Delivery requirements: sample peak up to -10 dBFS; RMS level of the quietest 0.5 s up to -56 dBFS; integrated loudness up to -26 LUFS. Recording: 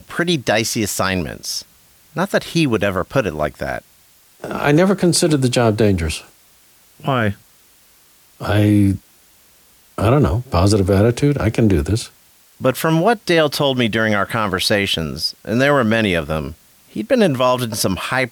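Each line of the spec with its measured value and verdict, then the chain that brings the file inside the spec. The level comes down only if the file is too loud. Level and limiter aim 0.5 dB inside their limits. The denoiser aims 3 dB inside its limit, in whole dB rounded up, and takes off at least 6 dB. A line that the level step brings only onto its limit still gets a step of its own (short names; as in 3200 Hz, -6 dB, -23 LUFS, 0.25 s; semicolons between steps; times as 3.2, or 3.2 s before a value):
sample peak -4.5 dBFS: fail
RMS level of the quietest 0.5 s -51 dBFS: fail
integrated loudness -17.5 LUFS: fail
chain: gain -9 dB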